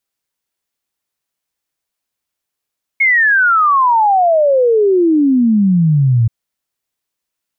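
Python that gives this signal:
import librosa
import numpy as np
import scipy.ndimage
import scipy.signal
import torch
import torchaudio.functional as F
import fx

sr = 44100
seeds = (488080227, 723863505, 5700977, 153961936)

y = fx.ess(sr, length_s=3.28, from_hz=2200.0, to_hz=110.0, level_db=-8.0)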